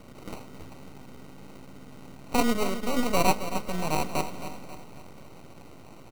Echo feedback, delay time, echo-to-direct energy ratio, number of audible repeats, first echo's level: 49%, 269 ms, -10.0 dB, 4, -11.0 dB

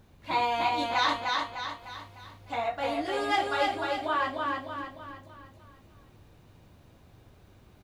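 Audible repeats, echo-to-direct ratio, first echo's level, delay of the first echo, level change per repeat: 5, -2.0 dB, -3.0 dB, 302 ms, -6.5 dB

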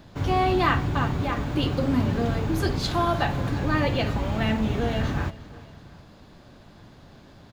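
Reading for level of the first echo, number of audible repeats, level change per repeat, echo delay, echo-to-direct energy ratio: -19.0 dB, 2, -5.5 dB, 359 ms, -18.0 dB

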